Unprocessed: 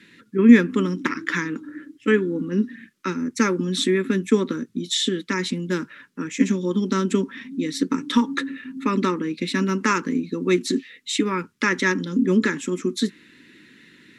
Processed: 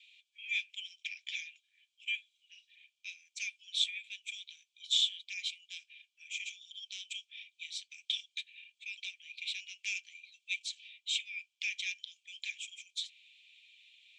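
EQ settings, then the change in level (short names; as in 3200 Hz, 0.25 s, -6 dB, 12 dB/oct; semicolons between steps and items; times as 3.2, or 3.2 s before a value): rippled Chebyshev high-pass 2300 Hz, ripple 9 dB; air absorption 130 m; high shelf 4900 Hz -7 dB; +6.5 dB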